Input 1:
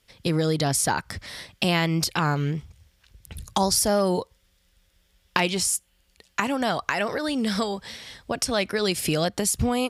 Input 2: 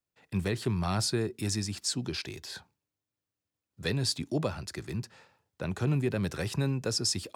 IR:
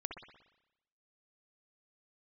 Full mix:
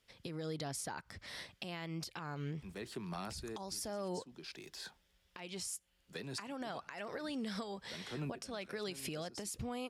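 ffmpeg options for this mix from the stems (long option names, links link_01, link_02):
-filter_complex "[0:a]highshelf=frequency=7200:gain=-6.5,acompressor=threshold=-29dB:ratio=4,volume=-7dB,asplit=2[link_01][link_02];[1:a]highpass=frequency=150:width=0.5412,highpass=frequency=150:width=1.3066,adelay=2300,volume=-5.5dB[link_03];[link_02]apad=whole_len=425799[link_04];[link_03][link_04]sidechaincompress=threshold=-49dB:ratio=12:attack=11:release=555[link_05];[link_01][link_05]amix=inputs=2:normalize=0,lowshelf=frequency=120:gain=-6,alimiter=level_in=7.5dB:limit=-24dB:level=0:latency=1:release=275,volume=-7.5dB"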